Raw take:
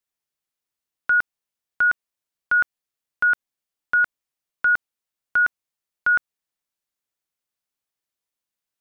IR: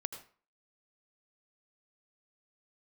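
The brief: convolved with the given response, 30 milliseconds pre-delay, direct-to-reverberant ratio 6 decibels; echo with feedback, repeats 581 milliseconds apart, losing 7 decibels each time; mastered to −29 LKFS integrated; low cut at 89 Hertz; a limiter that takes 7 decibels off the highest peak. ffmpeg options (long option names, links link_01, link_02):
-filter_complex "[0:a]highpass=89,alimiter=limit=-20dB:level=0:latency=1,aecho=1:1:581|1162|1743|2324|2905:0.447|0.201|0.0905|0.0407|0.0183,asplit=2[link_01][link_02];[1:a]atrim=start_sample=2205,adelay=30[link_03];[link_02][link_03]afir=irnorm=-1:irlink=0,volume=-5.5dB[link_04];[link_01][link_04]amix=inputs=2:normalize=0,volume=3dB"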